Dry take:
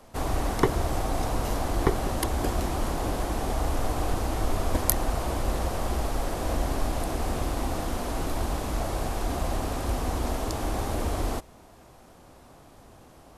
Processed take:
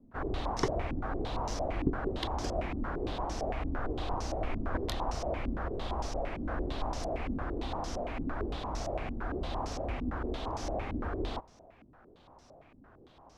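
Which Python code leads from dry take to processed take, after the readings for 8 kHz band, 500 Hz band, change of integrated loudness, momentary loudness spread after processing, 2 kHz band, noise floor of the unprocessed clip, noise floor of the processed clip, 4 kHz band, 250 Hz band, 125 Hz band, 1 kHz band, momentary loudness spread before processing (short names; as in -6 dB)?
-13.5 dB, -5.0 dB, -6.5 dB, 4 LU, -5.5 dB, -52 dBFS, -59 dBFS, -5.5 dB, -5.0 dB, -8.0 dB, -5.5 dB, 5 LU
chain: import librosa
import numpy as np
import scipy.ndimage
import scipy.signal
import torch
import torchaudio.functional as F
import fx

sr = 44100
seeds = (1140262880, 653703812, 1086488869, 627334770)

y = fx.filter_held_lowpass(x, sr, hz=8.8, low_hz=260.0, high_hz=5700.0)
y = y * 10.0 ** (-8.5 / 20.0)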